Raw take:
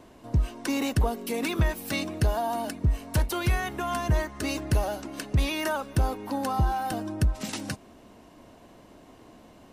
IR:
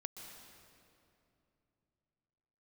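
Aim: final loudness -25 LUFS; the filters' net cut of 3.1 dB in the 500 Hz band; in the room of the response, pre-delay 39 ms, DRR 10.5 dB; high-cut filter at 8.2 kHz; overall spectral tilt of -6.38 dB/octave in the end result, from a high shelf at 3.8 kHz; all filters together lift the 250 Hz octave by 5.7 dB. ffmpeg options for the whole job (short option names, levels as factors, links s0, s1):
-filter_complex "[0:a]lowpass=8200,equalizer=f=250:t=o:g=9,equalizer=f=500:t=o:g=-7,highshelf=f=3800:g=-8.5,asplit=2[s0][s1];[1:a]atrim=start_sample=2205,adelay=39[s2];[s1][s2]afir=irnorm=-1:irlink=0,volume=0.422[s3];[s0][s3]amix=inputs=2:normalize=0,volume=1.19"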